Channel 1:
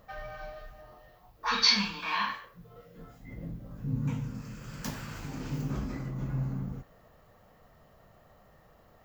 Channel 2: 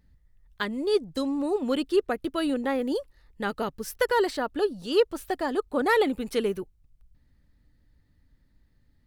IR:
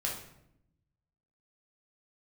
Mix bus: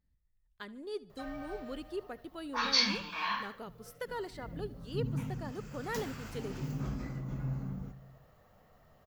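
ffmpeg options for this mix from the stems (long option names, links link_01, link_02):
-filter_complex "[0:a]adelay=1100,volume=-5dB,asplit=2[link_01][link_02];[link_02]volume=-15.5dB[link_03];[1:a]volume=-16dB,asplit=2[link_04][link_05];[link_05]volume=-20dB[link_06];[2:a]atrim=start_sample=2205[link_07];[link_03][link_07]afir=irnorm=-1:irlink=0[link_08];[link_06]aecho=0:1:73|146|219|292|365|438:1|0.45|0.202|0.0911|0.041|0.0185[link_09];[link_01][link_04][link_08][link_09]amix=inputs=4:normalize=0"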